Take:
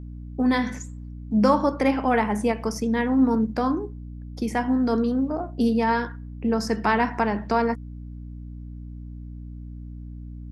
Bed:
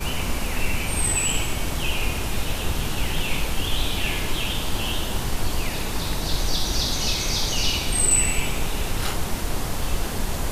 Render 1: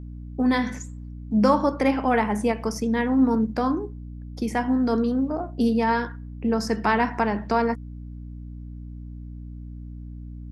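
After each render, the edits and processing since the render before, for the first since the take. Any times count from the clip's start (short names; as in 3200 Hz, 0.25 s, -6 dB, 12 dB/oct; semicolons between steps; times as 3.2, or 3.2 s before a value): nothing audible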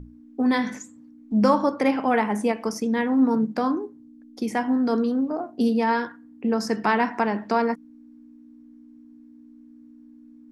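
notches 60/120/180 Hz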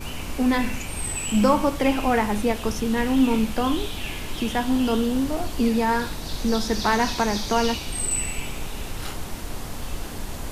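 add bed -6.5 dB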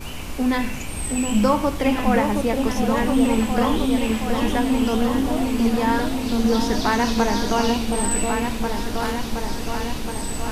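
repeats that get brighter 0.72 s, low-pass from 750 Hz, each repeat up 2 oct, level -3 dB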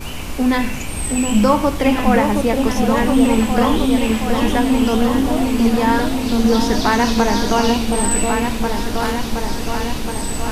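gain +4.5 dB; limiter -2 dBFS, peak gain reduction 1 dB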